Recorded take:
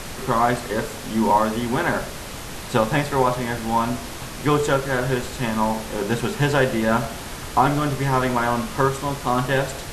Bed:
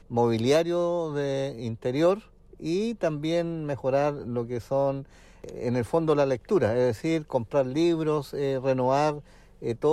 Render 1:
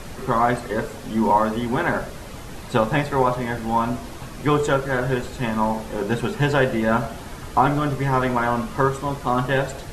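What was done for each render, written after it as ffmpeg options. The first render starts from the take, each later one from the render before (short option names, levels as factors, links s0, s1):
-af "afftdn=nr=8:nf=-34"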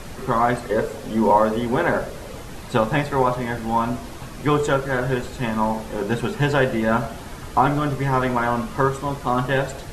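-filter_complex "[0:a]asettb=1/sr,asplit=3[s0][s1][s2];[s0]atrim=end=0.694[s3];[s1]atrim=start=0.69:end=2.43,asetpts=PTS-STARTPTS,afade=t=in:d=0.004:c=qsin,afade=t=out:st=1.736:d=0.004:c=qsin,equalizer=f=490:w=2.5:g=7[s4];[s2]atrim=start=2.426[s5];[s3][s4]acrossfade=d=0.004:c1=hsin:c2=qsin[s6];[s6][s5]acrossfade=d=0.004:c1=qsin:c2=hsin"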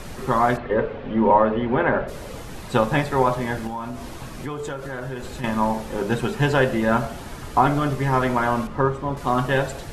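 -filter_complex "[0:a]asplit=3[s0][s1][s2];[s0]afade=t=out:st=0.56:d=0.02[s3];[s1]lowpass=f=3000:w=0.5412,lowpass=f=3000:w=1.3066,afade=t=in:st=0.56:d=0.02,afade=t=out:st=2.07:d=0.02[s4];[s2]afade=t=in:st=2.07:d=0.02[s5];[s3][s4][s5]amix=inputs=3:normalize=0,asettb=1/sr,asplit=3[s6][s7][s8];[s6]atrim=end=3.674[s9];[s7]atrim=start=3.67:end=5.44,asetpts=PTS-STARTPTS,afade=t=in:d=0.004:c=qsin,afade=t=out:st=1.766:d=0.004:c=qsin,acompressor=threshold=0.0398:ratio=4:attack=3.2:release=140:knee=1:detection=peak[s10];[s8]atrim=start=5.436[s11];[s9][s10]acrossfade=d=0.004:c1=hsin:c2=qsin[s12];[s12][s11]acrossfade=d=0.004:c1=qsin:c2=hsin,asettb=1/sr,asplit=3[s13][s14][s15];[s13]atrim=end=8.674[s16];[s14]atrim=start=8.67:end=9.17,asetpts=PTS-STARTPTS,afade=t=in:d=0.004:c=qsin,afade=t=out:st=0.496:d=0.004:c=qsin,lowpass=f=1400:p=1[s17];[s15]atrim=start=9.166[s18];[s16][s17]acrossfade=d=0.004:c1=hsin:c2=qsin[s19];[s19][s18]acrossfade=d=0.004:c1=qsin:c2=hsin"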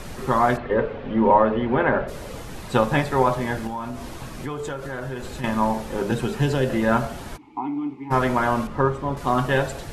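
-filter_complex "[0:a]asettb=1/sr,asplit=3[s0][s1][s2];[s0]atrim=end=6.114[s3];[s1]atrim=start=6.11:end=6.7,asetpts=PTS-STARTPTS,afade=t=in:d=0.004:c=qsin,afade=t=out:st=0.586:d=0.004:c=qsin,acrossover=split=490|3000[s4][s5][s6];[s5]acompressor=threshold=0.0282:ratio=6:attack=3.2:release=140:knee=2.83:detection=peak[s7];[s4][s7][s6]amix=inputs=3:normalize=0[s8];[s2]atrim=start=6.696[s9];[s3][s8]acrossfade=d=0.004:c1=hsin:c2=qsin[s10];[s10][s9]acrossfade=d=0.004:c1=qsin:c2=hsin,asplit=3[s11][s12][s13];[s11]afade=t=out:st=7.36:d=0.02[s14];[s12]asplit=3[s15][s16][s17];[s15]bandpass=f=300:t=q:w=8,volume=1[s18];[s16]bandpass=f=870:t=q:w=8,volume=0.501[s19];[s17]bandpass=f=2240:t=q:w=8,volume=0.355[s20];[s18][s19][s20]amix=inputs=3:normalize=0,afade=t=in:st=7.36:d=0.02,afade=t=out:st=8.1:d=0.02[s21];[s13]afade=t=in:st=8.1:d=0.02[s22];[s14][s21][s22]amix=inputs=3:normalize=0"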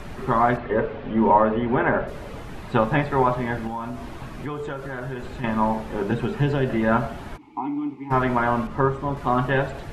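-filter_complex "[0:a]acrossover=split=3300[s0][s1];[s1]acompressor=threshold=0.00141:ratio=4:attack=1:release=60[s2];[s0][s2]amix=inputs=2:normalize=0,bandreject=f=510:w=12"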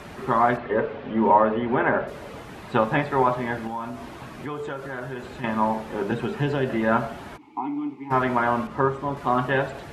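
-af "highpass=46,lowshelf=f=130:g=-9.5"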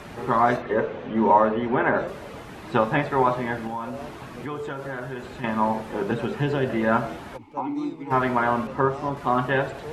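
-filter_complex "[1:a]volume=0.178[s0];[0:a][s0]amix=inputs=2:normalize=0"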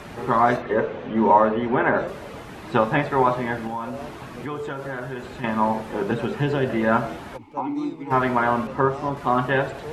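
-af "volume=1.19"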